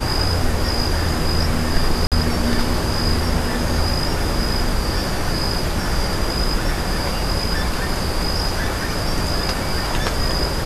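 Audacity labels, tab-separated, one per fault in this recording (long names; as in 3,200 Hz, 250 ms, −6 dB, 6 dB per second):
2.070000	2.120000	drop-out 47 ms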